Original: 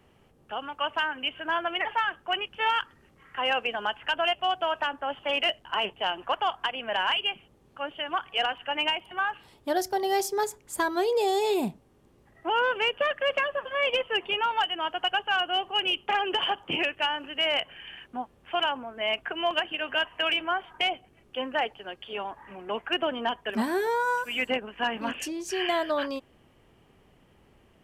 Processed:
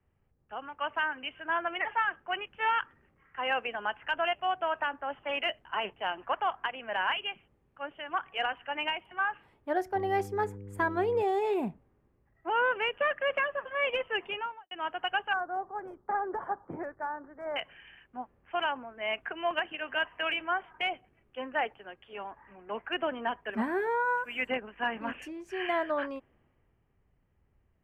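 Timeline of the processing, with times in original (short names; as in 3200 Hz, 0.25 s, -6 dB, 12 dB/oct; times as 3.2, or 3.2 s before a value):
9.94–11.21 buzz 100 Hz, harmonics 5, -40 dBFS -3 dB/oct
14.28–14.71 studio fade out
15.33–17.56 Butterworth band-stop 2800 Hz, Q 0.66
whole clip: resonant high shelf 3000 Hz -12 dB, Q 1.5; three-band expander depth 40%; gain -4 dB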